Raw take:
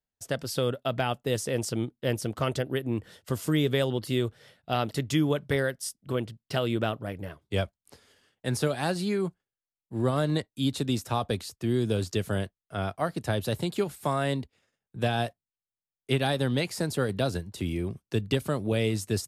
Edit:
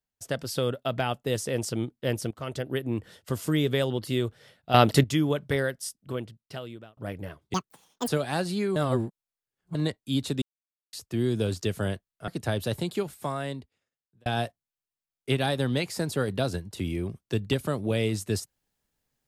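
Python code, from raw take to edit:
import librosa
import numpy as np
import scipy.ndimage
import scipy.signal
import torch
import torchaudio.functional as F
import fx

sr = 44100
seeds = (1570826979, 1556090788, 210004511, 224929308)

y = fx.edit(x, sr, fx.fade_in_from(start_s=2.31, length_s=0.44, floor_db=-15.5),
    fx.clip_gain(start_s=4.74, length_s=0.3, db=10.0),
    fx.fade_out_span(start_s=5.77, length_s=1.2),
    fx.speed_span(start_s=7.54, length_s=1.04, speed=1.93),
    fx.reverse_span(start_s=9.26, length_s=0.99),
    fx.silence(start_s=10.92, length_s=0.51),
    fx.cut(start_s=12.78, length_s=0.31),
    fx.fade_out_span(start_s=13.59, length_s=1.48), tone=tone)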